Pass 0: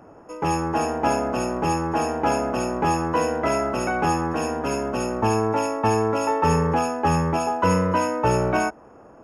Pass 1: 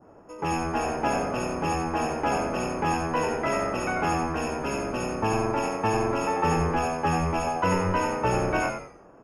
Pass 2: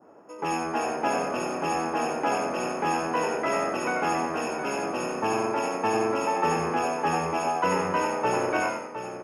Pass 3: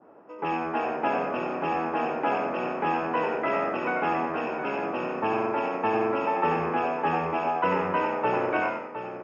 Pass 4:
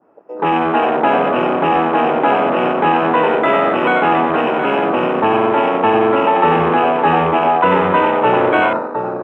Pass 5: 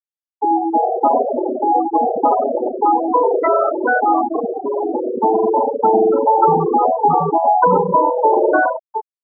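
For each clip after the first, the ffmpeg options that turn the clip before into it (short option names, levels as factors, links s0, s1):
-filter_complex "[0:a]asplit=5[s0][s1][s2][s3][s4];[s1]adelay=90,afreqshift=-88,volume=0.501[s5];[s2]adelay=180,afreqshift=-176,volume=0.176[s6];[s3]adelay=270,afreqshift=-264,volume=0.0617[s7];[s4]adelay=360,afreqshift=-352,volume=0.0214[s8];[s0][s5][s6][s7][s8]amix=inputs=5:normalize=0,adynamicequalizer=threshold=0.0112:dfrequency=2300:dqfactor=0.98:tfrequency=2300:tqfactor=0.98:attack=5:release=100:ratio=0.375:range=2.5:mode=boostabove:tftype=bell,volume=0.531"
-af "highpass=230,aecho=1:1:712:0.316"
-af "lowpass=f=3400:w=0.5412,lowpass=f=3400:w=1.3066,lowshelf=f=69:g=-6"
-filter_complex "[0:a]afwtdn=0.0158,asplit=2[s0][s1];[s1]alimiter=limit=0.075:level=0:latency=1,volume=1.26[s2];[s0][s2]amix=inputs=2:normalize=0,volume=2.51"
-af "afftfilt=real='re*gte(hypot(re,im),0.794)':imag='im*gte(hypot(re,im),0.794)':win_size=1024:overlap=0.75,volume=1.26"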